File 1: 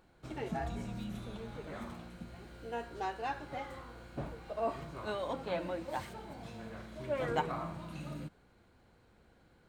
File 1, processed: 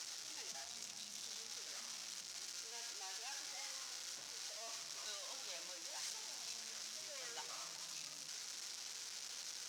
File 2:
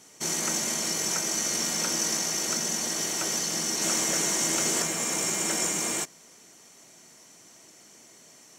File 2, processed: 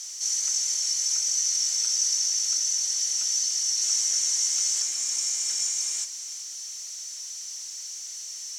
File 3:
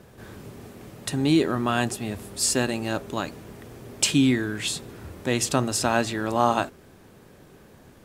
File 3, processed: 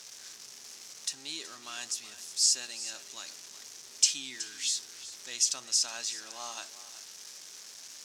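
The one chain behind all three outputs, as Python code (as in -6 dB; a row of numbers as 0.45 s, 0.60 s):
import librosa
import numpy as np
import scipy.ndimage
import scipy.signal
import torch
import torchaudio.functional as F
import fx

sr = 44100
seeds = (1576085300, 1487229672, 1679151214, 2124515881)

y = x + 0.5 * 10.0 ** (-31.0 / 20.0) * np.sign(x)
y = fx.bandpass_q(y, sr, hz=5800.0, q=3.2)
y = y + 10.0 ** (-15.0 / 20.0) * np.pad(y, (int(372 * sr / 1000.0), 0))[:len(y)]
y = F.gain(torch.from_numpy(y), 3.5).numpy()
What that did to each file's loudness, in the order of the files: -5.5 LU, +1.5 LU, -6.0 LU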